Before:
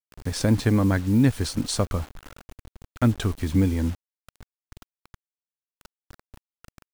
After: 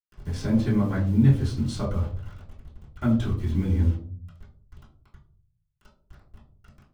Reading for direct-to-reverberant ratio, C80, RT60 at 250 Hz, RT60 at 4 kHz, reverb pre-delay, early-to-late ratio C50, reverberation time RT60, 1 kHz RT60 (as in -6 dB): -9.5 dB, 12.0 dB, 0.80 s, 0.25 s, 3 ms, 8.0 dB, 0.50 s, 0.40 s